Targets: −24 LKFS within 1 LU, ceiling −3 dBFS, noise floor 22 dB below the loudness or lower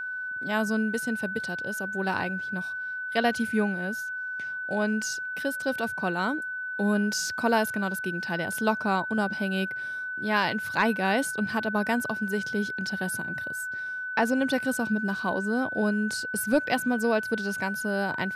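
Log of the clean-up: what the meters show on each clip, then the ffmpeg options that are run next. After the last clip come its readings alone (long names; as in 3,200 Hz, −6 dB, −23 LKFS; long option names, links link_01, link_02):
interfering tone 1,500 Hz; level of the tone −31 dBFS; integrated loudness −28.0 LKFS; sample peak −11.5 dBFS; target loudness −24.0 LKFS
→ -af "bandreject=frequency=1500:width=30"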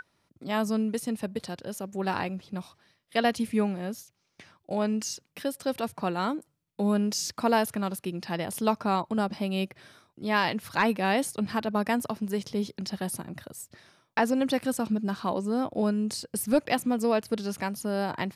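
interfering tone none found; integrated loudness −29.0 LKFS; sample peak −12.5 dBFS; target loudness −24.0 LKFS
→ -af "volume=5dB"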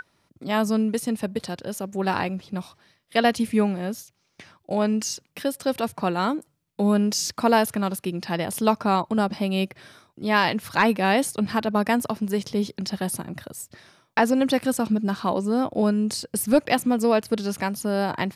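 integrated loudness −24.0 LKFS; sample peak −7.5 dBFS; background noise floor −70 dBFS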